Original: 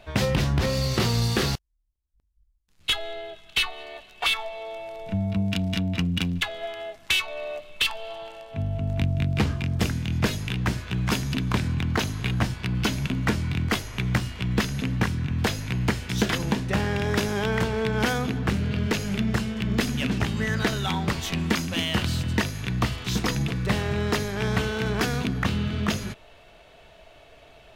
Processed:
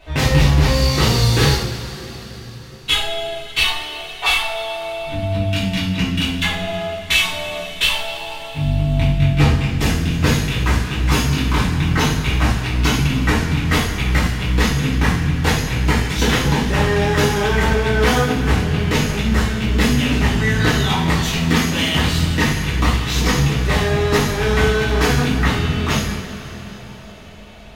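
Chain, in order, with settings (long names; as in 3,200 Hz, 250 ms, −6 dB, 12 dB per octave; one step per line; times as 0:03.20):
coupled-rooms reverb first 0.57 s, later 4.7 s, from −17 dB, DRR −9.5 dB
level −1 dB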